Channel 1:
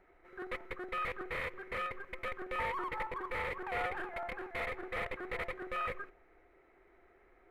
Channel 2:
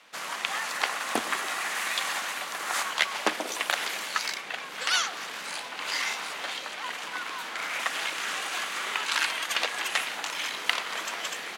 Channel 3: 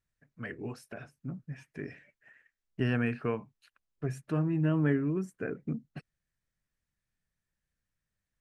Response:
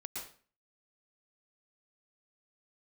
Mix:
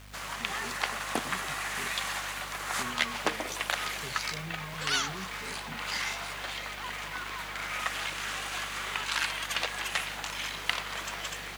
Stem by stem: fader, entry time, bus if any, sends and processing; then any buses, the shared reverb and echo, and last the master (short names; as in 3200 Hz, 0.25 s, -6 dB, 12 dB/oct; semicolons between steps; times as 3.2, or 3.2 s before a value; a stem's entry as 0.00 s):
-1.5 dB, 2.00 s, bus A, no send, HPF 1000 Hz
-3.5 dB, 0.00 s, no bus, no send, bell 160 Hz +14 dB 0.37 oct; hum 50 Hz, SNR 16 dB; requantised 8-bit, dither none
-9.5 dB, 0.00 s, bus A, no send, dry
bus A: 0.0 dB, comb 4.8 ms, depth 89%; limiter -34.5 dBFS, peak gain reduction 11.5 dB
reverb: off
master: dry